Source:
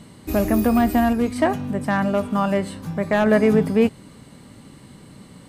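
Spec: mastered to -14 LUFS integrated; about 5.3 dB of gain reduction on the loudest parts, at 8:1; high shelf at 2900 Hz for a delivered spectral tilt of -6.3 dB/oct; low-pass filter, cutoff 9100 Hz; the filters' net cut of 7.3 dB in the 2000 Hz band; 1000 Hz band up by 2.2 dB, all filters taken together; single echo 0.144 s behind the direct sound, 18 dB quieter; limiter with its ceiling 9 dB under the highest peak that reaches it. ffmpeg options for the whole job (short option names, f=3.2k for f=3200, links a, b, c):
-af "lowpass=9.1k,equalizer=f=1k:t=o:g=6,equalizer=f=2k:t=o:g=-9,highshelf=f=2.9k:g=-8,acompressor=threshold=-17dB:ratio=8,alimiter=limit=-18dB:level=0:latency=1,aecho=1:1:144:0.126,volume=13.5dB"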